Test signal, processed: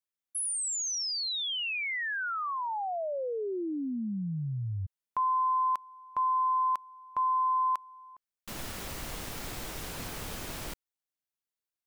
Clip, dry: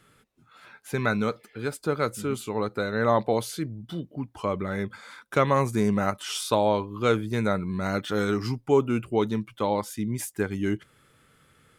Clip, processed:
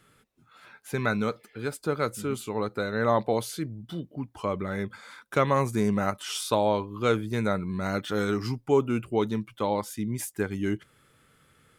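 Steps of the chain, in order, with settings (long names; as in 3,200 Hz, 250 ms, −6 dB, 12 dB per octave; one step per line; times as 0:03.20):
high-shelf EQ 12,000 Hz +2.5 dB
level −1.5 dB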